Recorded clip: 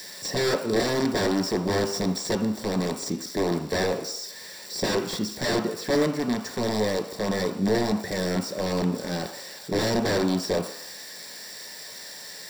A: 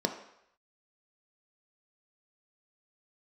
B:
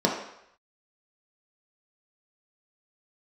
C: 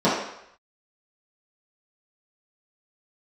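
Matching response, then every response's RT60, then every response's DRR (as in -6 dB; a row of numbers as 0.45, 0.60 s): A; 0.75, 0.75, 0.75 s; 4.5, -2.0, -11.5 dB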